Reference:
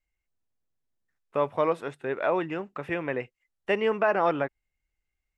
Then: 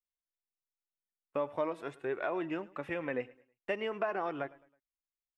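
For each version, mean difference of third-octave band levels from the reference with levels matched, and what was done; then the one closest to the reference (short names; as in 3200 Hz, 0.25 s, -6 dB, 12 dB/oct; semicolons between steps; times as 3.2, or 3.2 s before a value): 2.5 dB: compressor, threshold -25 dBFS, peak gain reduction 7 dB; gate -55 dBFS, range -22 dB; feedback echo 0.107 s, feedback 37%, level -21 dB; flange 0.47 Hz, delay 2.6 ms, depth 1.4 ms, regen +52%; gain -1 dB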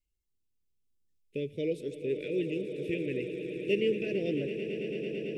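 11.0 dB: Chebyshev band-stop 440–2500 Hz, order 3; LFO notch sine 1.2 Hz 670–2500 Hz; swelling echo 0.111 s, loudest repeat 8, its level -13.5 dB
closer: first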